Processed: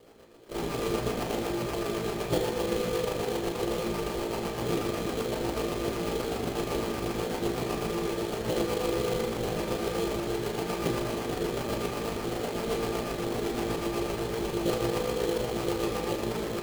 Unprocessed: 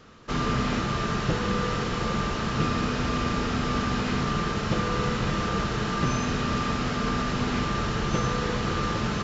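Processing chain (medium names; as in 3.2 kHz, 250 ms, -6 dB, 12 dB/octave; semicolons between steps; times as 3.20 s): granular stretch 1.8×, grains 79 ms; rotary cabinet horn 8 Hz; high-order bell 530 Hz +12 dB; sample-rate reducer 3.7 kHz, jitter 20%; on a send: reverberation RT60 0.50 s, pre-delay 31 ms, DRR 4 dB; on the sum: trim -7 dB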